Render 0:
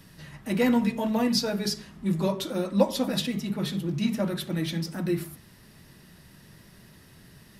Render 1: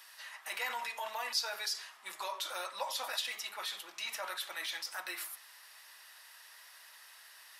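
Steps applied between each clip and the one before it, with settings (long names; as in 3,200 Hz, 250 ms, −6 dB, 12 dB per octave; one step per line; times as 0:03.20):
high-pass filter 850 Hz 24 dB per octave
in parallel at 0 dB: compressor whose output falls as the input rises −41 dBFS, ratio −1
on the sum: level −6 dB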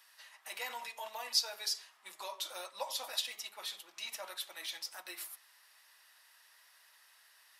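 dynamic equaliser 1,500 Hz, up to −7 dB, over −53 dBFS, Q 1
expander for the loud parts 1.5 to 1, over −55 dBFS
level +4.5 dB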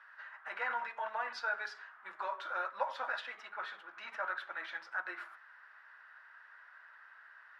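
low-pass with resonance 1,500 Hz, resonance Q 6.3
level +2 dB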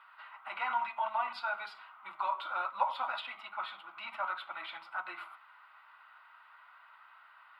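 phaser with its sweep stopped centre 1,700 Hz, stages 6
level +6.5 dB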